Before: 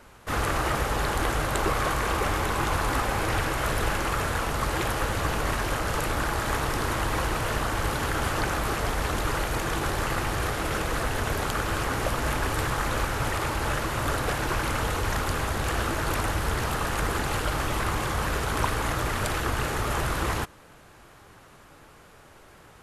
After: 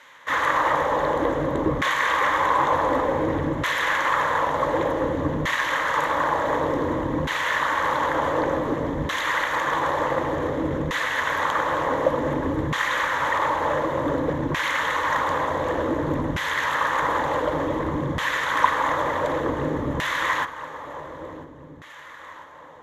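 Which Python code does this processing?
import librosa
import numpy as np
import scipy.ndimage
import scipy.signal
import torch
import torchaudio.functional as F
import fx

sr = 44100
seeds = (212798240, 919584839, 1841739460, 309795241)

y = fx.ripple_eq(x, sr, per_octave=1.1, db=10)
y = fx.echo_feedback(y, sr, ms=996, feedback_pct=44, wet_db=-13.5)
y = fx.filter_lfo_bandpass(y, sr, shape='saw_down', hz=0.55, low_hz=210.0, high_hz=2500.0, q=1.1)
y = F.gain(torch.from_numpy(y), 8.5).numpy()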